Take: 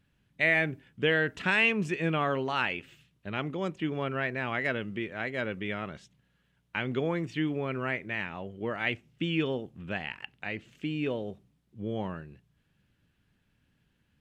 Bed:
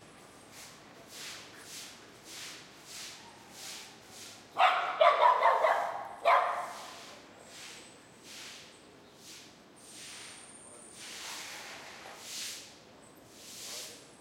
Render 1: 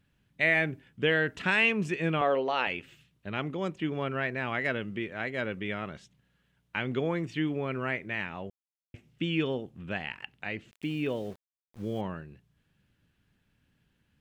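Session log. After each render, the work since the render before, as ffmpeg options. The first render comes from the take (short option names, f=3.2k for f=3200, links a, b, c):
-filter_complex "[0:a]asettb=1/sr,asplit=3[a][b][c];[a]atrim=end=2.214[d];[b]atrim=start=2.21:end=2.67,asetpts=PTS-STARTPTS,afade=t=in:d=0.004:c=qsin,afade=t=out:st=0.456:d=0.004:c=qsin,highpass=260,equalizer=f=500:t=q:w=4:g=9,equalizer=f=710:t=q:w=4:g=5,equalizer=f=1.5k:t=q:w=4:g=-4,lowpass=f=5.7k:w=0.5412,lowpass=f=5.7k:w=1.3066[e];[c]atrim=start=2.666[f];[d][e]acrossfade=d=0.004:c1=hsin:c2=qsin[g];[g][f]acrossfade=d=0.004:c1=qsin:c2=hsin,asettb=1/sr,asplit=3[h][i][j];[h]atrim=end=10.714[k];[i]atrim=start=10.71:end=12.01,asetpts=PTS-STARTPTS,afade=t=in:d=0.004:c=qsin,afade=t=out:st=1.296:d=0.004:c=qsin,aeval=exprs='val(0)*gte(abs(val(0)),0.00355)':c=same[l];[j]atrim=start=12.006[m];[k][l]acrossfade=d=0.004:c1=hsin:c2=qsin[n];[n][m]acrossfade=d=0.004:c1=qsin:c2=hsin,asplit=3[o][p][q];[o]atrim=end=8.5,asetpts=PTS-STARTPTS,afade=t=out:st=8.496:d=0.004:c=hsin[r];[p]atrim=start=8.5:end=8.94,asetpts=PTS-STARTPTS,volume=0[s];[q]atrim=start=8.94,asetpts=PTS-STARTPTS,afade=t=in:d=0.004:c=hsin[t];[r][s][t]concat=n=3:v=0:a=1"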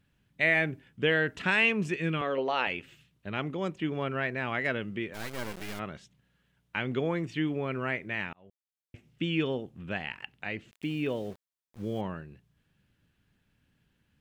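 -filter_complex "[0:a]asettb=1/sr,asplit=3[a][b][c];[a]atrim=end=1.964[d];[b]atrim=start=1.96:end=2.38,asetpts=PTS-STARTPTS,afade=t=in:d=0.004:c=qsin,afade=t=out:st=0.416:d=0.004:c=qsin,equalizer=f=740:w=1.6:g=-11[e];[c]atrim=start=2.376[f];[d][e]acrossfade=d=0.004:c1=hsin:c2=qsin[g];[g][f]acrossfade=d=0.004:c1=qsin:c2=hsin,asplit=3[h][i][j];[h]afade=t=out:st=5.13:d=0.02[k];[i]acrusher=bits=4:dc=4:mix=0:aa=0.000001,afade=t=in:st=5.13:d=0.02,afade=t=out:st=5.78:d=0.02[l];[j]afade=t=in:st=5.78:d=0.02[m];[k][l][m]amix=inputs=3:normalize=0,asplit=2[n][o];[n]atrim=end=8.33,asetpts=PTS-STARTPTS,afade=t=out:st=8.326:d=0.004:c=hsin[p];[o]atrim=start=8.33,asetpts=PTS-STARTPTS,afade=t=in:d=0.74[q];[p][q]concat=n=2:v=0:a=1"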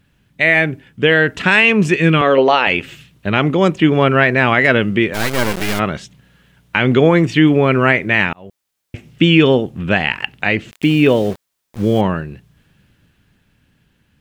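-af "dynaudnorm=f=210:g=17:m=7dB,alimiter=level_in=12.5dB:limit=-1dB:release=50:level=0:latency=1"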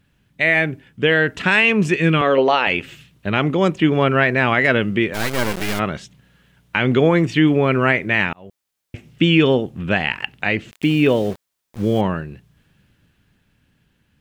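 -af "volume=-3.5dB"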